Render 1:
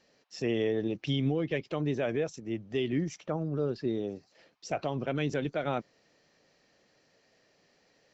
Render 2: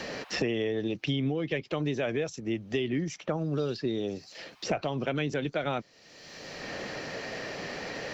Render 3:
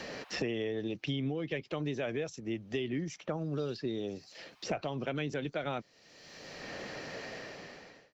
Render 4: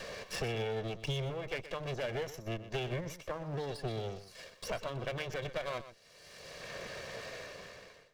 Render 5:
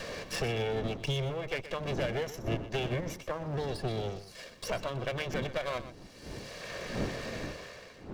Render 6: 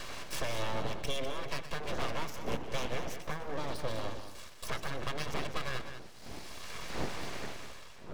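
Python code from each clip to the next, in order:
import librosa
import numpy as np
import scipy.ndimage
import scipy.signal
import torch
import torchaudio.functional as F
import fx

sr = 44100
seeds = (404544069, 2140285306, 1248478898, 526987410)

y1 = fx.peak_eq(x, sr, hz=3700.0, db=4.5, octaves=2.5)
y1 = fx.band_squash(y1, sr, depth_pct=100)
y2 = fx.fade_out_tail(y1, sr, length_s=0.9)
y2 = F.gain(torch.from_numpy(y2), -5.0).numpy()
y3 = fx.lower_of_two(y2, sr, delay_ms=1.8)
y3 = y3 + 10.0 ** (-13.5 / 20.0) * np.pad(y3, (int(123 * sr / 1000.0), 0))[:len(y3)]
y4 = fx.dmg_wind(y3, sr, seeds[0], corner_hz=340.0, level_db=-47.0)
y4 = F.gain(torch.from_numpy(y4), 3.5).numpy()
y5 = np.abs(y4)
y5 = y5 + 10.0 ** (-9.5 / 20.0) * np.pad(y5, (int(200 * sr / 1000.0), 0))[:len(y5)]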